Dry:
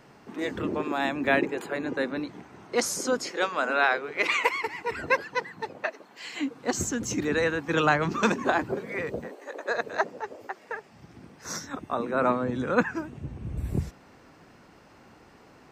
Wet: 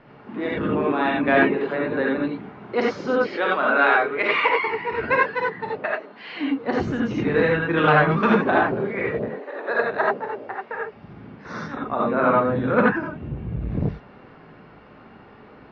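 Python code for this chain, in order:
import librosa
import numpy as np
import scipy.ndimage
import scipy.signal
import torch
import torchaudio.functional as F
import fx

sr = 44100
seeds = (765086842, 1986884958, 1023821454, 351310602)

y = scipy.signal.sosfilt(scipy.signal.bessel(8, 2400.0, 'lowpass', norm='mag', fs=sr, output='sos'), x)
y = fx.rev_gated(y, sr, seeds[0], gate_ms=110, shape='rising', drr_db=-3.0)
y = fx.transformer_sat(y, sr, knee_hz=600.0)
y = y * 10.0 ** (3.0 / 20.0)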